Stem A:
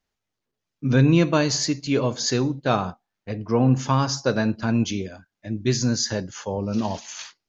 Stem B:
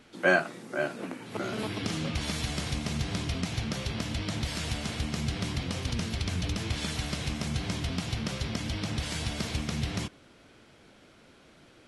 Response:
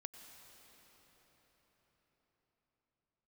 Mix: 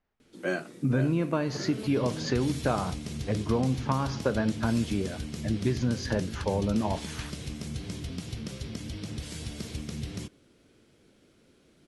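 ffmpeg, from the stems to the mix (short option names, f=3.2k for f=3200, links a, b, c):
-filter_complex "[0:a]lowpass=1.8k,acompressor=threshold=-25dB:ratio=6,volume=2dB[a];[1:a]lowshelf=f=570:t=q:w=1.5:g=6.5,adelay=200,volume=-10.5dB[b];[a][b]amix=inputs=2:normalize=0,aemphasis=mode=production:type=cd"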